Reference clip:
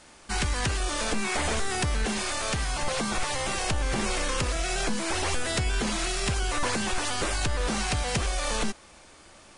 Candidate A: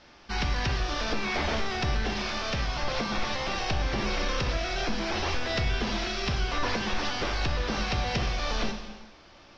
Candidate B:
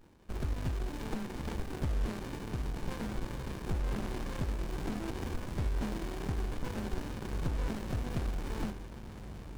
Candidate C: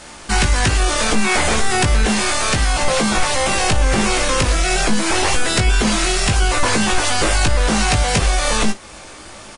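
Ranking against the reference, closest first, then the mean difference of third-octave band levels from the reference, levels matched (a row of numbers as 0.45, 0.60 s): C, A, B; 1.5, 5.0, 10.0 dB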